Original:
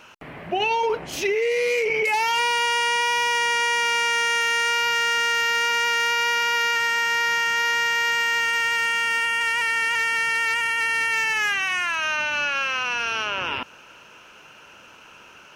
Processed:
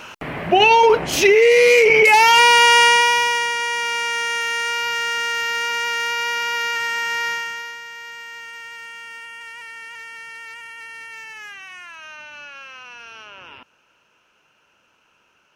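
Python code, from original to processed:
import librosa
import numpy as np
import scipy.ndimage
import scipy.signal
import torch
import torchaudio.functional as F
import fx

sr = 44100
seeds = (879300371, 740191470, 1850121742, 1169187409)

y = fx.gain(x, sr, db=fx.line((2.83, 10.0), (3.55, -1.0), (7.28, -1.0), (7.81, -14.0)))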